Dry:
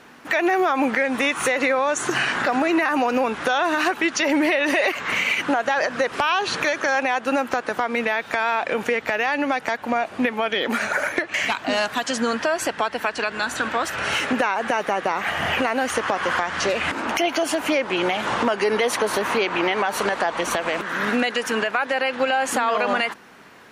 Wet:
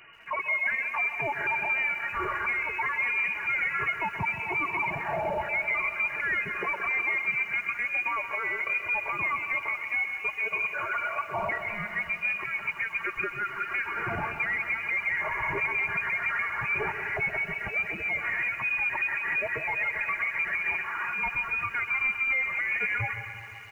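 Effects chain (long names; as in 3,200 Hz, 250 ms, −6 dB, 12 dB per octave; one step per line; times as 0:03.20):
expanding power law on the bin magnitudes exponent 1.9
Butterworth high-pass 400 Hz 48 dB per octave
notch filter 1,600 Hz, Q 7.5
comb filter 4 ms, depth 88%
brickwall limiter −13.5 dBFS, peak gain reduction 6.5 dB
soft clipping −17.5 dBFS, distortion −17 dB
background noise pink −52 dBFS
echo with a time of its own for lows and highs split 1,100 Hz, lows 131 ms, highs 171 ms, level −11.5 dB
voice inversion scrambler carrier 2,900 Hz
feedback echo at a low word length 130 ms, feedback 80%, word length 8 bits, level −14 dB
level −5.5 dB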